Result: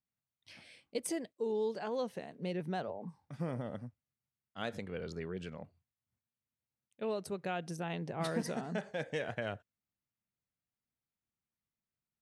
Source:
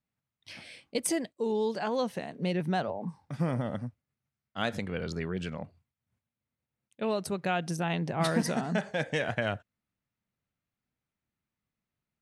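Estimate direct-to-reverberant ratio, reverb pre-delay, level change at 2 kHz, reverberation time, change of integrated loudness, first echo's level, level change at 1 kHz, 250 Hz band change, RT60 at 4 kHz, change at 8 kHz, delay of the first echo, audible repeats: none, none, -9.0 dB, none, -7.0 dB, none, -8.5 dB, -8.0 dB, none, -9.0 dB, none, none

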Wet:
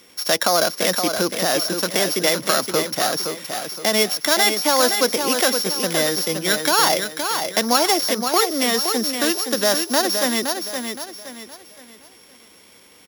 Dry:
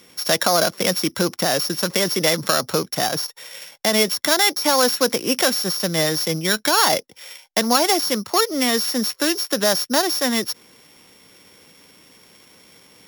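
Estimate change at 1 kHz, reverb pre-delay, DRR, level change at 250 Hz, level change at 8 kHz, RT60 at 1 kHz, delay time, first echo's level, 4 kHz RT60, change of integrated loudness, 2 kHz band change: +1.0 dB, none, none, -1.0 dB, +1.0 dB, none, 0.518 s, -6.5 dB, none, 0.0 dB, +1.0 dB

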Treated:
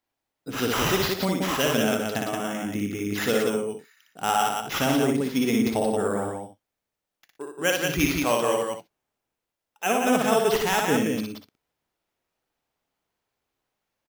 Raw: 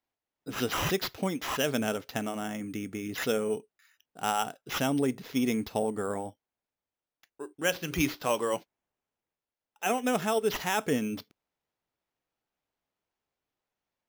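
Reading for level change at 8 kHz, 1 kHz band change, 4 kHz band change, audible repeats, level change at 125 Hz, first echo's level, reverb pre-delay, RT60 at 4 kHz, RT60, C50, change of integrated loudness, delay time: +6.5 dB, +6.5 dB, +6.5 dB, 4, +6.0 dB, -3.0 dB, none, none, none, none, +6.5 dB, 59 ms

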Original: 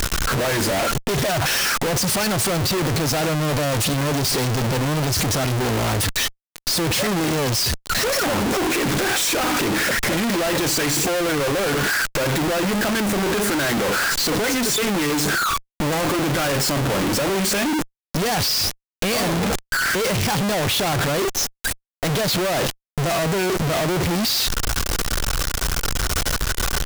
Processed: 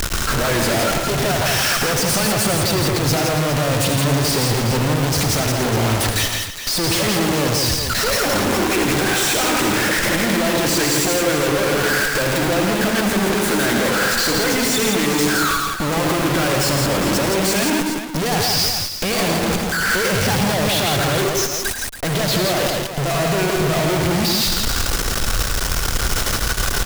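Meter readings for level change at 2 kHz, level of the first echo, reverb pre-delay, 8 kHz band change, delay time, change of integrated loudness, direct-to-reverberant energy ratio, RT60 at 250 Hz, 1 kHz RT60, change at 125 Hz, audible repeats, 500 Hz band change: +2.5 dB, -8.5 dB, none, +2.5 dB, 80 ms, +2.5 dB, none, none, none, +3.0 dB, 5, +3.0 dB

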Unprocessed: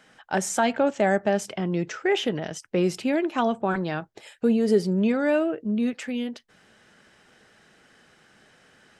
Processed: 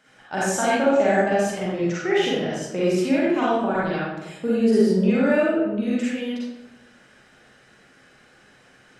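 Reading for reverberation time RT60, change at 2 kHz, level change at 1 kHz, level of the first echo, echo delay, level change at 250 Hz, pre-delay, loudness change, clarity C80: 1.0 s, +4.0 dB, +3.0 dB, none, none, +3.0 dB, 38 ms, +3.0 dB, 1.5 dB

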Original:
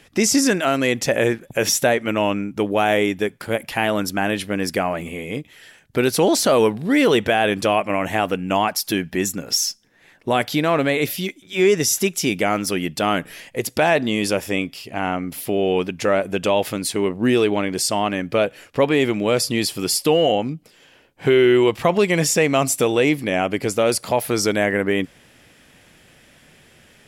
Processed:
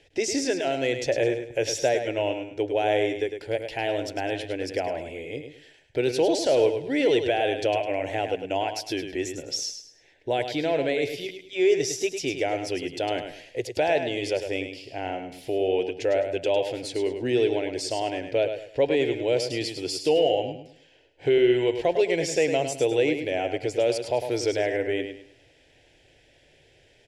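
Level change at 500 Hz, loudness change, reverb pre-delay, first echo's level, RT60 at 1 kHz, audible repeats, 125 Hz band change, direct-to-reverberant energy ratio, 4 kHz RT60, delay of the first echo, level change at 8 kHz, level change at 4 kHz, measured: -4.0 dB, -6.0 dB, none, -8.0 dB, none, 3, -10.0 dB, none, none, 0.104 s, -11.5 dB, -7.0 dB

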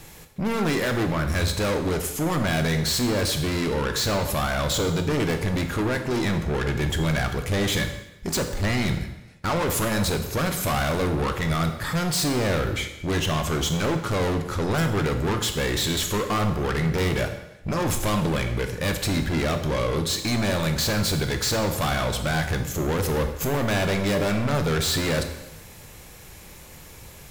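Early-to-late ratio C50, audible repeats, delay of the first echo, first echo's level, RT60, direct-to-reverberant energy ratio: 8.5 dB, none, none, none, 0.95 s, 5.5 dB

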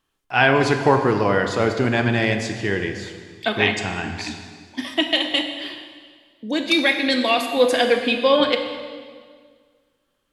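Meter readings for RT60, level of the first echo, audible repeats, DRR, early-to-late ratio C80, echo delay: 1.8 s, none, none, 5.5 dB, 8.0 dB, none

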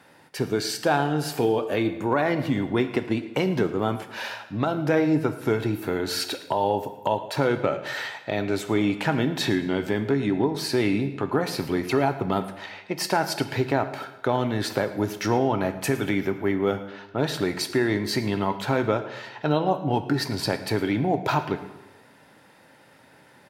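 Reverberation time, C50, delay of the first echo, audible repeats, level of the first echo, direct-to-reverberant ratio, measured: 1.1 s, 11.0 dB, 0.11 s, 2, -18.5 dB, 9.5 dB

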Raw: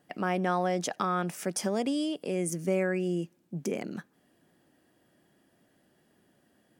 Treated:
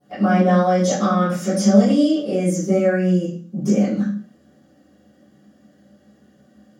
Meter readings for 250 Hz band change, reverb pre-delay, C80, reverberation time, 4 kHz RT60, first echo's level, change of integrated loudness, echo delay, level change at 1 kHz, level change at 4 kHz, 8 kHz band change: +15.5 dB, 3 ms, 7.0 dB, 0.45 s, 0.45 s, none, +12.5 dB, none, +9.5 dB, +8.0 dB, +7.5 dB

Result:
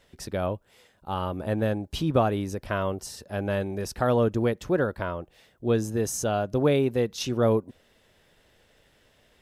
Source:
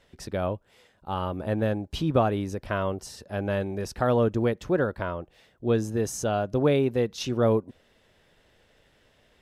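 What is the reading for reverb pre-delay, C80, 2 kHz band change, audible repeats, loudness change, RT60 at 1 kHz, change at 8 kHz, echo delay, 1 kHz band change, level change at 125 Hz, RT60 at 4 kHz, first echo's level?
none, none, +0.5 dB, none, 0.0 dB, none, +3.0 dB, none, 0.0 dB, 0.0 dB, none, none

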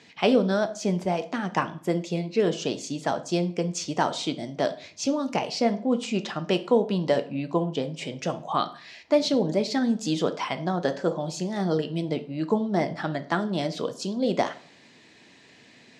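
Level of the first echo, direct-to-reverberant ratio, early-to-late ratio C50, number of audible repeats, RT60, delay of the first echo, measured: none, 9.0 dB, 15.5 dB, none, 0.45 s, none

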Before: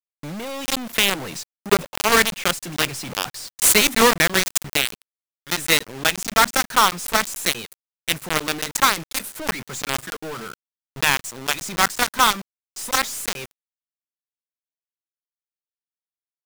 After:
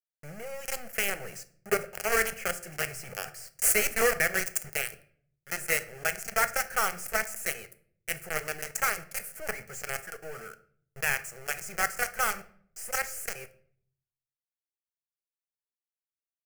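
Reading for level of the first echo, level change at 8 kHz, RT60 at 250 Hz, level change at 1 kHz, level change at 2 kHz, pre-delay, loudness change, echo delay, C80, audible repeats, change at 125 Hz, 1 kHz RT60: none, -9.0 dB, 0.85 s, -12.5 dB, -8.0 dB, 4 ms, -9.5 dB, none, 20.5 dB, none, -11.5 dB, 0.50 s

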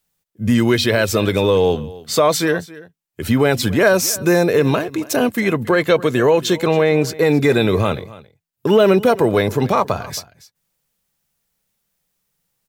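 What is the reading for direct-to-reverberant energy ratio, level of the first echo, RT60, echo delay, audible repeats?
none, -19.5 dB, none, 0.274 s, 1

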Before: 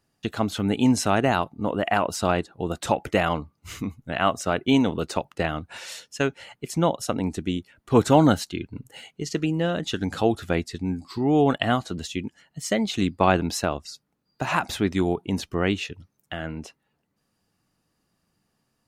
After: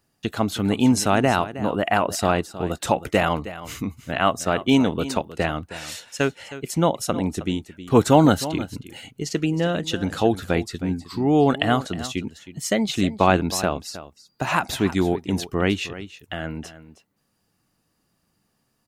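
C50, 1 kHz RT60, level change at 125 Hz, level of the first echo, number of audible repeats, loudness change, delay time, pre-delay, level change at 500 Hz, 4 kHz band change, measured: none, none, +2.0 dB, -14.5 dB, 1, +2.0 dB, 0.315 s, none, +2.0 dB, +2.5 dB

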